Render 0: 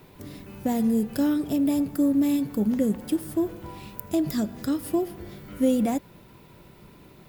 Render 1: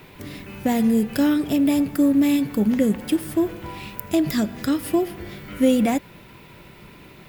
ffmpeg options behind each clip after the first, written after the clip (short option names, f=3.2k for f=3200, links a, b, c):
-af "equalizer=f=2.3k:w=0.93:g=8,volume=4dB"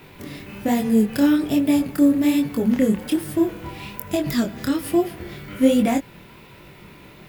-af "flanger=delay=20:depth=7.9:speed=1.2,volume=3.5dB"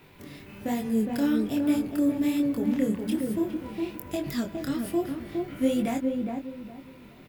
-filter_complex "[0:a]asplit=2[a][b];[b]adelay=412,lowpass=f=950:p=1,volume=-3dB,asplit=2[c][d];[d]adelay=412,lowpass=f=950:p=1,volume=0.29,asplit=2[e][f];[f]adelay=412,lowpass=f=950:p=1,volume=0.29,asplit=2[g][h];[h]adelay=412,lowpass=f=950:p=1,volume=0.29[i];[a][c][e][g][i]amix=inputs=5:normalize=0,volume=-8.5dB"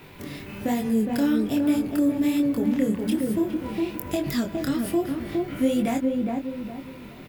-af "acompressor=threshold=-35dB:ratio=1.5,volume=7.5dB"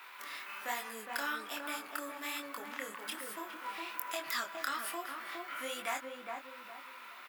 -af "highpass=f=1.2k:t=q:w=2.8,volume=-4dB"